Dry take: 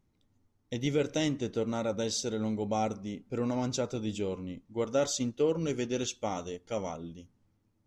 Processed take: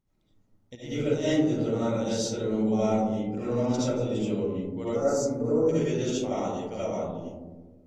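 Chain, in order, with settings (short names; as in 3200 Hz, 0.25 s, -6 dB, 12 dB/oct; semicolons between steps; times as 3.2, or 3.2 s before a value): 4.93–5.69 Butterworth band-stop 3100 Hz, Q 0.72; reverb RT60 1.3 s, pre-delay 35 ms, DRR -10.5 dB; 0.75–1.28 upward expander 1.5:1, over -30 dBFS; gain -8 dB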